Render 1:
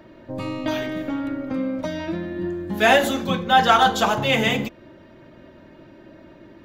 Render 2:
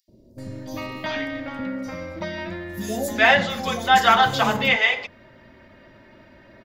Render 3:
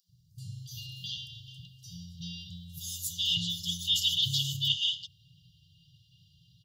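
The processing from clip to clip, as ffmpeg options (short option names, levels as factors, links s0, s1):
-filter_complex "[0:a]equalizer=f=160:t=o:w=0.33:g=-8,equalizer=f=315:t=o:w=0.33:g=-10,equalizer=f=2000:t=o:w=0.33:g=7,equalizer=f=5000:t=o:w=0.33:g=7,acrossover=split=470|5500[s0][s1][s2];[s0]adelay=80[s3];[s1]adelay=380[s4];[s3][s4][s2]amix=inputs=3:normalize=0"
-af "highpass=120,afftfilt=real='re*(1-between(b*sr/4096,180,2800))':imag='im*(1-between(b*sr/4096,180,2800))':win_size=4096:overlap=0.75"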